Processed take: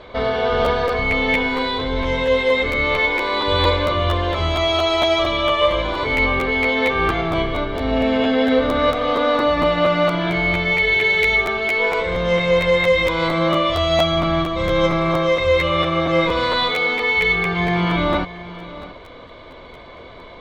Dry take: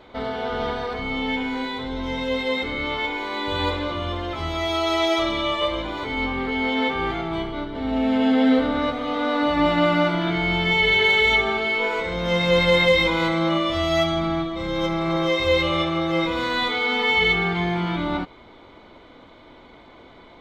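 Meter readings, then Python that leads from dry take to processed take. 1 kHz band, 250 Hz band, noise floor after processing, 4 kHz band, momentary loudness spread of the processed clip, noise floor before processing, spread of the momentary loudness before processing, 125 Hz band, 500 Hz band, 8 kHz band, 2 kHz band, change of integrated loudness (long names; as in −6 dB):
+4.5 dB, +0.5 dB, −40 dBFS, +2.5 dB, 5 LU, −48 dBFS, 10 LU, +5.0 dB, +5.5 dB, can't be measured, +4.0 dB, +4.0 dB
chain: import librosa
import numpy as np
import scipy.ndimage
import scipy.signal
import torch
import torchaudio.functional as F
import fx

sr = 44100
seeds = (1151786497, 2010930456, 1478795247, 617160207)

y = scipy.signal.sosfilt(scipy.signal.butter(2, 6500.0, 'lowpass', fs=sr, output='sos'), x)
y = y + 0.46 * np.pad(y, (int(1.8 * sr / 1000.0), 0))[:len(y)]
y = fx.rider(y, sr, range_db=4, speed_s=0.5)
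y = y + 10.0 ** (-16.5 / 20.0) * np.pad(y, (int(675 * sr / 1000.0), 0))[:len(y)]
y = fx.buffer_crackle(y, sr, first_s=0.64, period_s=0.23, block=512, kind='repeat')
y = y * 10.0 ** (3.0 / 20.0)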